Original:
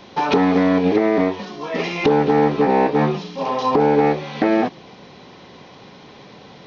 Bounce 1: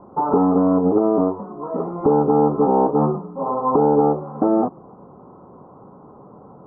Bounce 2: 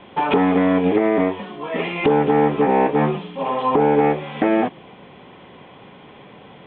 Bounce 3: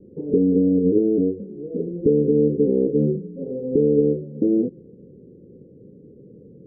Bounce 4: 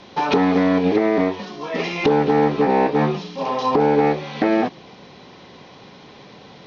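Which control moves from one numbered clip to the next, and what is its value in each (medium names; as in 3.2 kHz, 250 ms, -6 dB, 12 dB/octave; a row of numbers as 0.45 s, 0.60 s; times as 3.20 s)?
Chebyshev low-pass, frequency: 1.3 kHz, 3.4 kHz, 500 Hz, 12 kHz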